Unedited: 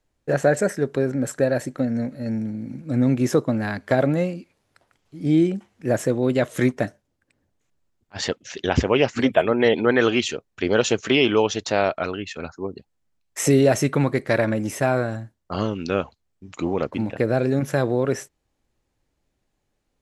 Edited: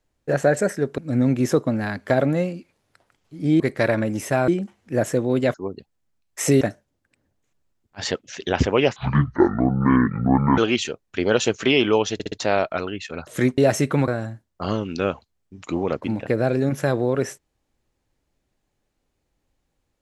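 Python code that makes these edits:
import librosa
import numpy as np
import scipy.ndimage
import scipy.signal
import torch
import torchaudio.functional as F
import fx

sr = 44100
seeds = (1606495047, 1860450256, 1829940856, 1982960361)

y = fx.edit(x, sr, fx.cut(start_s=0.98, length_s=1.81),
    fx.swap(start_s=6.47, length_s=0.31, other_s=12.53, other_length_s=1.07),
    fx.speed_span(start_s=9.13, length_s=0.89, speed=0.55),
    fx.stutter(start_s=11.58, slice_s=0.06, count=4),
    fx.move(start_s=14.1, length_s=0.88, to_s=5.41), tone=tone)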